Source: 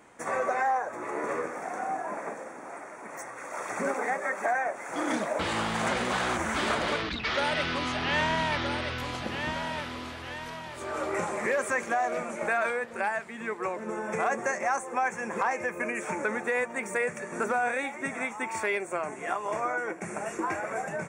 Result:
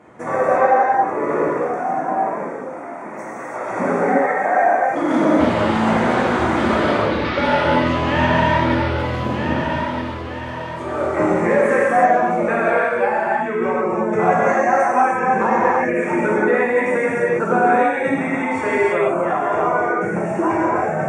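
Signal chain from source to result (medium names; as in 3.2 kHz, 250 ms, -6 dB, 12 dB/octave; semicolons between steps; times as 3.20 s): low-pass 2.1 kHz 6 dB/octave; reverb removal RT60 1.5 s; high-pass 74 Hz; tilt shelf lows +4 dB, about 870 Hz; gated-style reverb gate 370 ms flat, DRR -7.5 dB; trim +6.5 dB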